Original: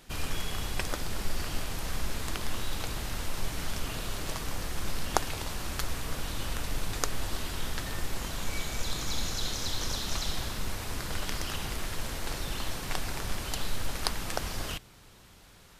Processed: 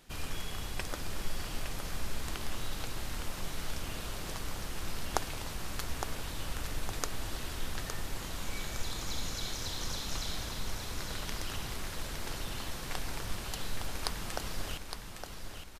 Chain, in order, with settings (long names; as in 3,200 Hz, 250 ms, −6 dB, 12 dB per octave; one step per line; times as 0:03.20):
repeating echo 862 ms, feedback 48%, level −7 dB
level −5 dB